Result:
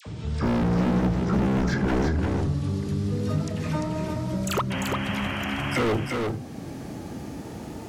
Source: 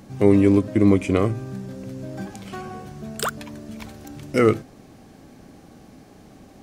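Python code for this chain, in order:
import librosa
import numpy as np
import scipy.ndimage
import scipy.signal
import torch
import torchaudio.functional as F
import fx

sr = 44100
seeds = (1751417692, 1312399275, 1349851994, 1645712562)

y = fx.speed_glide(x, sr, from_pct=55, to_pct=113)
y = scipy.signal.sosfilt(scipy.signal.butter(2, 63.0, 'highpass', fs=sr, output='sos'), y)
y = fx.low_shelf(y, sr, hz=230.0, db=5.5)
y = fx.dispersion(y, sr, late='lows', ms=63.0, hz=1200.0)
y = np.clip(10.0 ** (22.5 / 20.0) * y, -1.0, 1.0) / 10.0 ** (22.5 / 20.0)
y = fx.spec_paint(y, sr, seeds[0], shape='noise', start_s=4.7, length_s=1.11, low_hz=570.0, high_hz=3300.0, level_db=-37.0)
y = y + 10.0 ** (-5.5 / 20.0) * np.pad(y, (int(346 * sr / 1000.0), 0))[:len(y)]
y = fx.band_squash(y, sr, depth_pct=40)
y = F.gain(torch.from_numpy(y), 1.5).numpy()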